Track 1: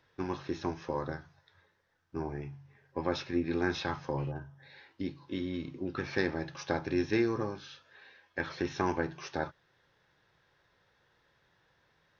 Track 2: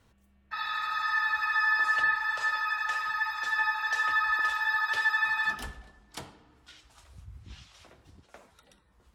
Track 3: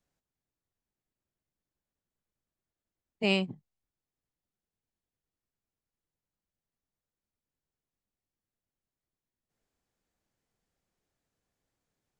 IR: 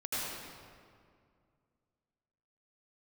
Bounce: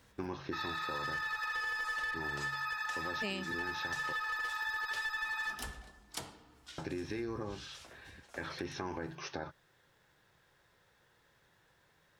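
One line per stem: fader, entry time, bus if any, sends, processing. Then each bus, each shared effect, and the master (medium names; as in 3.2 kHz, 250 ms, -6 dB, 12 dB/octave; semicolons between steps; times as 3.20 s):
+0.5 dB, 0.00 s, muted 4.13–6.78 s, no send, peak limiter -25 dBFS, peak gain reduction 11 dB
-1.0 dB, 0.00 s, no send, tone controls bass -2 dB, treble +6 dB; one-sided clip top -25 dBFS
0.0 dB, 0.00 s, no send, treble shelf 3.9 kHz +10.5 dB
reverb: none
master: compression 6:1, threshold -35 dBFS, peak gain reduction 15 dB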